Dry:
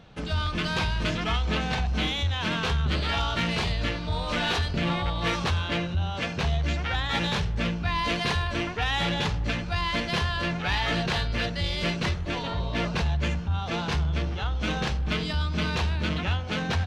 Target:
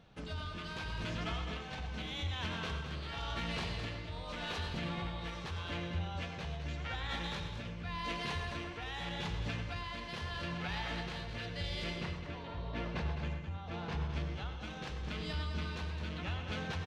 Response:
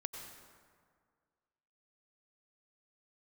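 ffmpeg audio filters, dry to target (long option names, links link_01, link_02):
-filter_complex "[0:a]asettb=1/sr,asplit=3[link_01][link_02][link_03];[link_01]atrim=end=11.984[link_04];[link_02]atrim=start=11.98:end=14.14,asetpts=PTS-STARTPTS,afade=type=in:duration=0.004:curve=qsin,afade=type=out:start_time=2.156:duration=0.004:curve=qsin,lowpass=frequency=2500:poles=1[link_05];[link_03]atrim=start=14.136[link_06];[link_04][link_05]acrossfade=duration=0.004:curve1=hsin:curve2=qsin[link_07];[link_07][link_06]acrossfade=duration=0.004:curve1=qsin:curve2=hsin,alimiter=limit=-18.5dB:level=0:latency=1:release=182,tremolo=f=0.85:d=0.42,aecho=1:1:210:0.398[link_08];[1:a]atrim=start_sample=2205,atrim=end_sample=6174[link_09];[link_08][link_09]afir=irnorm=-1:irlink=0,volume=-7dB"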